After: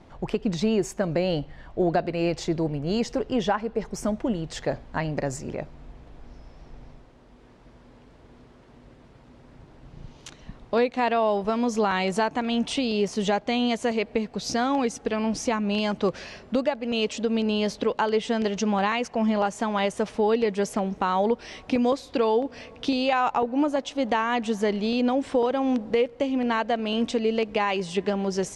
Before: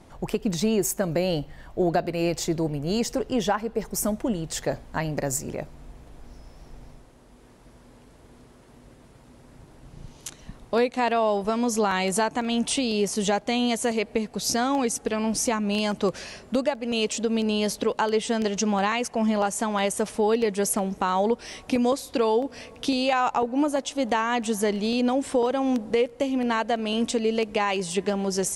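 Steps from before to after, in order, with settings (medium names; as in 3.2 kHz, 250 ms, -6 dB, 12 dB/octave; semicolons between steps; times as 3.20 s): low-pass 4.5 kHz 12 dB/octave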